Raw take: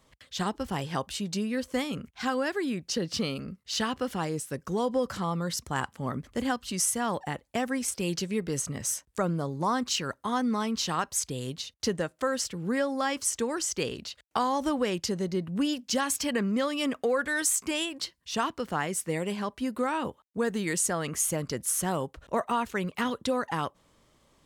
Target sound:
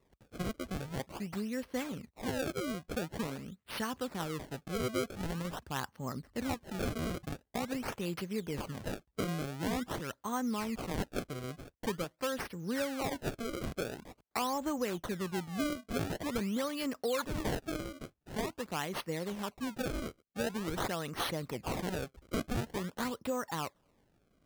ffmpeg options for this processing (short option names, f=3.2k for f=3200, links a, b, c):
-af "equalizer=f=4.2k:w=3:g=-7,acrusher=samples=28:mix=1:aa=0.000001:lfo=1:lforange=44.8:lforate=0.46,volume=-6.5dB"